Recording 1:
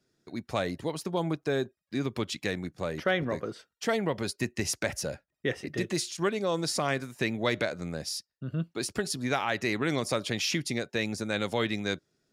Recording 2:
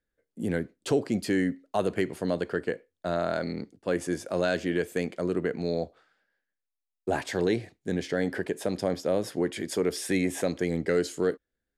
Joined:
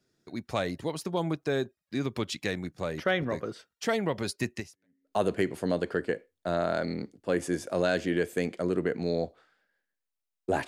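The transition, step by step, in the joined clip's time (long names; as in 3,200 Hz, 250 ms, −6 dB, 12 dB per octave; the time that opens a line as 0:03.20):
recording 1
0:04.85: continue with recording 2 from 0:01.44, crossfade 0.56 s exponential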